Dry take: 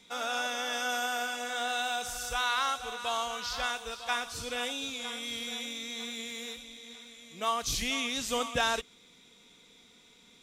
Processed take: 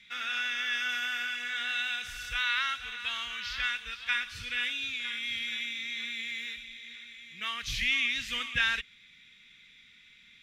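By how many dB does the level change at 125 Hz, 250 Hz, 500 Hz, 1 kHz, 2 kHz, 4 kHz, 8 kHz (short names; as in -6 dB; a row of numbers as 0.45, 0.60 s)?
-1.0, -10.0, -20.0, -8.5, +4.5, +1.5, -9.5 dB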